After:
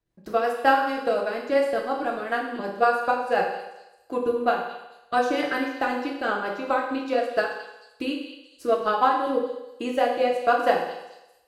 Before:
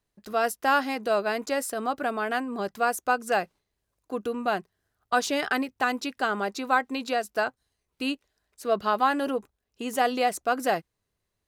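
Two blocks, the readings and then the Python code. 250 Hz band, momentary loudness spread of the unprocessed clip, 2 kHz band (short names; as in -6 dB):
+1.5 dB, 8 LU, +0.5 dB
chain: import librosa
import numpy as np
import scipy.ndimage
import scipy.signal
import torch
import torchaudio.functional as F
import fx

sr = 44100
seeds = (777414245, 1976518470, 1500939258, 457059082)

y = fx.high_shelf(x, sr, hz=3800.0, db=-8.0)
y = fx.rotary_switch(y, sr, hz=5.5, then_hz=1.2, switch_at_s=7.88)
y = fx.transient(y, sr, attack_db=6, sustain_db=-10)
y = fx.echo_stepped(y, sr, ms=219, hz=3700.0, octaves=0.7, feedback_pct=70, wet_db=-9.5)
y = fx.rev_fdn(y, sr, rt60_s=0.96, lf_ratio=0.75, hf_ratio=0.95, size_ms=18.0, drr_db=-1.5)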